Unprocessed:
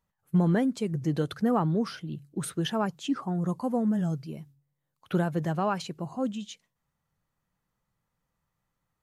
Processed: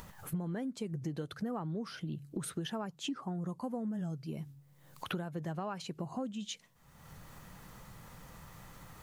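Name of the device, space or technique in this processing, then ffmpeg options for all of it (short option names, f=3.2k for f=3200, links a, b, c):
upward and downward compression: -af "acompressor=mode=upward:threshold=-32dB:ratio=2.5,acompressor=threshold=-37dB:ratio=8,volume=2dB"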